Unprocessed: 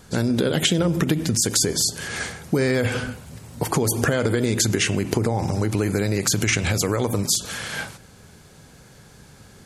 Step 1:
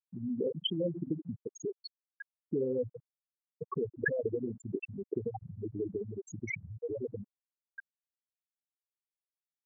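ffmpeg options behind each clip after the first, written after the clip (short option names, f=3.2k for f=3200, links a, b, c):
-af "afftfilt=real='re*gte(hypot(re,im),0.501)':imag='im*gte(hypot(re,im),0.501)':win_size=1024:overlap=0.75,bandpass=f=1.3k:t=q:w=0.77:csg=0"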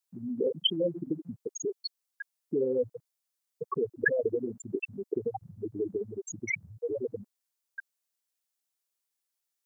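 -af "bass=f=250:g=-10,treble=f=4k:g=7,volume=5.5dB"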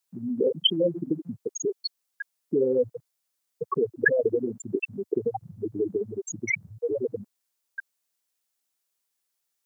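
-af "highpass=f=93:w=0.5412,highpass=f=93:w=1.3066,volume=5dB"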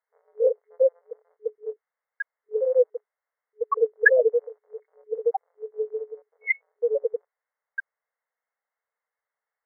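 -af "afftfilt=real='re*between(b*sr/4096,430,2200)':imag='im*between(b*sr/4096,430,2200)':win_size=4096:overlap=0.75,volume=5dB"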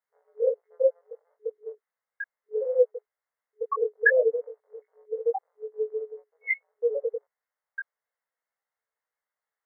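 -af "flanger=delay=16:depth=4:speed=0.34"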